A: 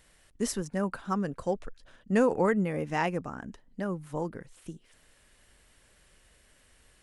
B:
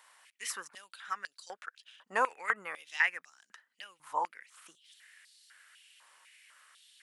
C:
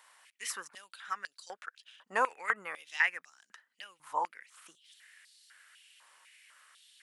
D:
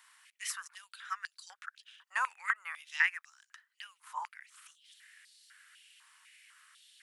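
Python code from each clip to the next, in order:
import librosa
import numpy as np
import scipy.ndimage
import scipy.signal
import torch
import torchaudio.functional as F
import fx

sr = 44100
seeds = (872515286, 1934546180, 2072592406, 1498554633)

y1 = fx.dynamic_eq(x, sr, hz=5600.0, q=0.73, threshold_db=-50.0, ratio=4.0, max_db=-5)
y1 = fx.filter_held_highpass(y1, sr, hz=4.0, low_hz=980.0, high_hz=4300.0)
y2 = y1
y3 = scipy.signal.sosfilt(scipy.signal.butter(4, 1100.0, 'highpass', fs=sr, output='sos'), y2)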